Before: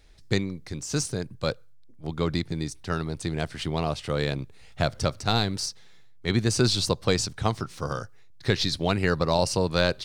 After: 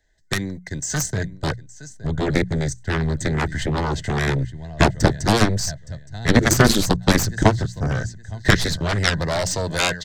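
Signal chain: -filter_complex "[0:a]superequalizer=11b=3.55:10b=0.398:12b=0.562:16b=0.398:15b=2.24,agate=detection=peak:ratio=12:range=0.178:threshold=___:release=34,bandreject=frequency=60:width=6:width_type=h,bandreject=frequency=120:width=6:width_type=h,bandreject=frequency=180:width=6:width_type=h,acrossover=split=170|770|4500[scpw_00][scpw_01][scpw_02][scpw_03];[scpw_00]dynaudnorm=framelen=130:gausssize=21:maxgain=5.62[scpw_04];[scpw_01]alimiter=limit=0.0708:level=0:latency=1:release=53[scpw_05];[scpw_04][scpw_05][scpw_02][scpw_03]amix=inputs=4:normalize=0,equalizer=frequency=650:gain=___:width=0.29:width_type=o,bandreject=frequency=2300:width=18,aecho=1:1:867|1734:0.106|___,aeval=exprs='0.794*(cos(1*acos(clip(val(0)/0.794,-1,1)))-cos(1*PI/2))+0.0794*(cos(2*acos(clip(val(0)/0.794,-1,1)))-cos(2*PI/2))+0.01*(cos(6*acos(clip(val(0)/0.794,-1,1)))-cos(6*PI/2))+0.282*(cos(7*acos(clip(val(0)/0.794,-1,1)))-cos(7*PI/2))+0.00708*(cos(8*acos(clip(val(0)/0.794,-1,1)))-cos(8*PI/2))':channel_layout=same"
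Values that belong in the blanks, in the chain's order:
0.00891, 9, 0.0201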